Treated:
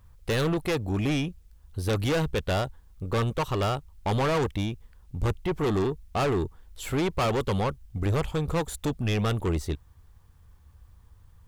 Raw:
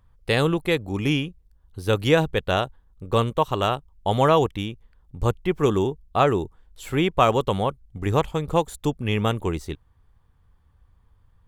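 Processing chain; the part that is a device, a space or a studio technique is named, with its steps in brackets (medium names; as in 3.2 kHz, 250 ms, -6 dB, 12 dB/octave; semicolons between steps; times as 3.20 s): open-reel tape (saturation -25 dBFS, distortion -5 dB; peaking EQ 74 Hz +5 dB 0.9 oct; white noise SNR 47 dB); trim +2.5 dB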